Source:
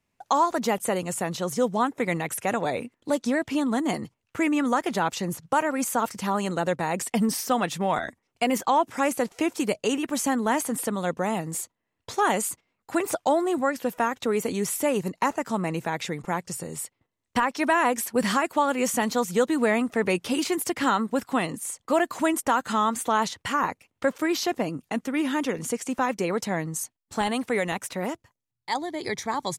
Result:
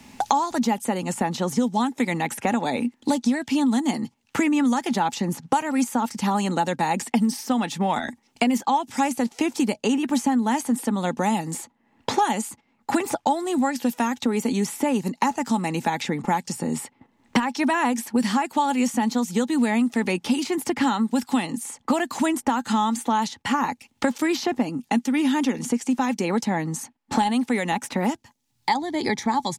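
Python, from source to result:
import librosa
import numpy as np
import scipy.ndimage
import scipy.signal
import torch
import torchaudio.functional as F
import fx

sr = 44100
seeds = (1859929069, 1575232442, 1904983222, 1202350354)

y = fx.peak_eq(x, sr, hz=5000.0, db=7.0, octaves=2.2)
y = fx.notch(y, sr, hz=1600.0, q=8.6)
y = fx.small_body(y, sr, hz=(240.0, 840.0, 1600.0), ring_ms=50, db=14)
y = fx.band_squash(y, sr, depth_pct=100)
y = y * 10.0 ** (-5.5 / 20.0)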